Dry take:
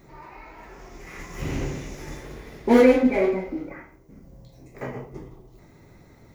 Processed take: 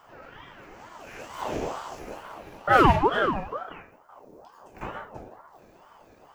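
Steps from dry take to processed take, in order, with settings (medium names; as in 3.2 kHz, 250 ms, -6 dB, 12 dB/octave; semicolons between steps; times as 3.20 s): 1.98–2.73 s: dynamic bell 5.5 kHz, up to -6 dB, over -55 dBFS, Q 0.75; ring modulator with a swept carrier 700 Hz, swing 50%, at 2.2 Hz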